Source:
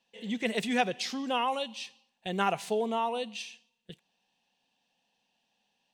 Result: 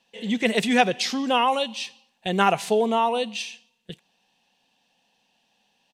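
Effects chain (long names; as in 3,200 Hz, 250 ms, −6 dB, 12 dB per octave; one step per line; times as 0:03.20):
downsampling to 32,000 Hz
level +8.5 dB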